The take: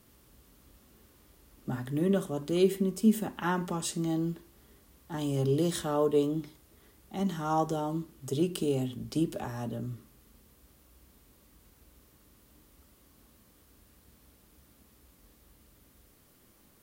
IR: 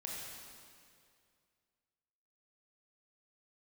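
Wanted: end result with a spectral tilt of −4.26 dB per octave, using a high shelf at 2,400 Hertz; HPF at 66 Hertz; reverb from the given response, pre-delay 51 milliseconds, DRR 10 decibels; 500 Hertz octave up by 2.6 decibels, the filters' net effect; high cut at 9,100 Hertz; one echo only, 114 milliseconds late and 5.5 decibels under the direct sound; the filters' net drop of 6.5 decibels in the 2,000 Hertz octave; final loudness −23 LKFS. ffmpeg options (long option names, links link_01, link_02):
-filter_complex "[0:a]highpass=66,lowpass=9100,equalizer=frequency=500:width_type=o:gain=4,equalizer=frequency=2000:width_type=o:gain=-5.5,highshelf=frequency=2400:gain=-9,aecho=1:1:114:0.531,asplit=2[link_01][link_02];[1:a]atrim=start_sample=2205,adelay=51[link_03];[link_02][link_03]afir=irnorm=-1:irlink=0,volume=-9.5dB[link_04];[link_01][link_04]amix=inputs=2:normalize=0,volume=5.5dB"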